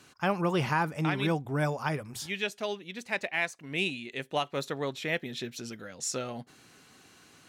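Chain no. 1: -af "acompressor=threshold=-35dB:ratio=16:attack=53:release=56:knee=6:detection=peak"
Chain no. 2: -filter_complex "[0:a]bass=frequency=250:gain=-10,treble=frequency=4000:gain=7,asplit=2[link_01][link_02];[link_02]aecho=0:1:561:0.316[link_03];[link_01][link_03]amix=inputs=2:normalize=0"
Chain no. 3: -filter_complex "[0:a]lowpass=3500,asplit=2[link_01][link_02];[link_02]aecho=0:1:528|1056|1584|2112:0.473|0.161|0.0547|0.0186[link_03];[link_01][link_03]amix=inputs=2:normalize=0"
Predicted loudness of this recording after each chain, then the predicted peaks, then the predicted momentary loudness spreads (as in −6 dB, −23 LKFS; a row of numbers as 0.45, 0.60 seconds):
−36.0, −32.0, −31.5 LKFS; −18.0, −14.0, −14.5 dBFS; 11, 10, 13 LU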